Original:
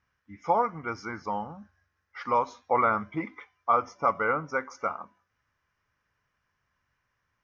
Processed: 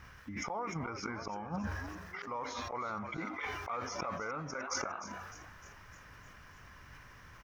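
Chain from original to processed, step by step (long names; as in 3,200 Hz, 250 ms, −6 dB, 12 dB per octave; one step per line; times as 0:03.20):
brickwall limiter −19.5 dBFS, peak gain reduction 7 dB
gate with flip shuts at −28 dBFS, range −32 dB
low-shelf EQ 68 Hz +9 dB
compressor whose output falls as the input rises −54 dBFS, ratio −1
on a send: echo with shifted repeats 303 ms, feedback 58%, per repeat +100 Hz, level −13.5 dB
on the sum: level that may fall only so fast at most 33 dB per second
level +15 dB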